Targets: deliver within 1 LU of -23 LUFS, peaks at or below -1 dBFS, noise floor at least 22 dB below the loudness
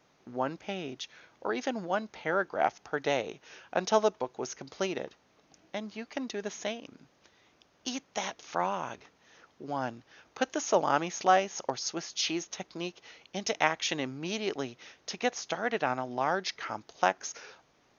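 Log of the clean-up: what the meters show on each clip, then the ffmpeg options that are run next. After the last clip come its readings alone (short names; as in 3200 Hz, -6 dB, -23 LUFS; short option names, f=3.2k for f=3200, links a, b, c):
loudness -32.5 LUFS; peak -8.0 dBFS; loudness target -23.0 LUFS
-> -af "volume=9.5dB,alimiter=limit=-1dB:level=0:latency=1"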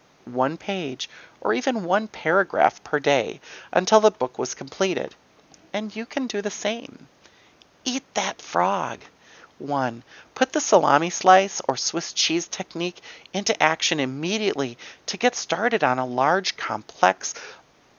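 loudness -23.0 LUFS; peak -1.0 dBFS; noise floor -58 dBFS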